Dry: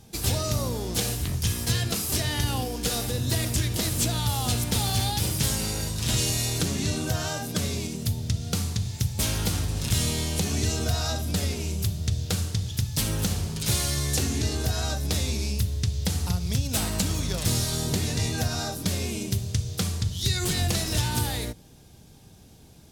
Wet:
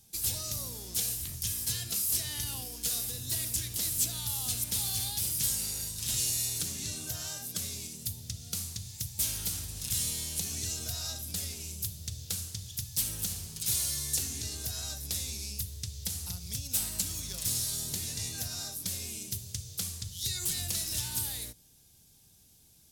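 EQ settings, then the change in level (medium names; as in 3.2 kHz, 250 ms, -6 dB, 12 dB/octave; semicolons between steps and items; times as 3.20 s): pre-emphasis filter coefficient 0.9; bass shelf 250 Hz +7.5 dB; -1.5 dB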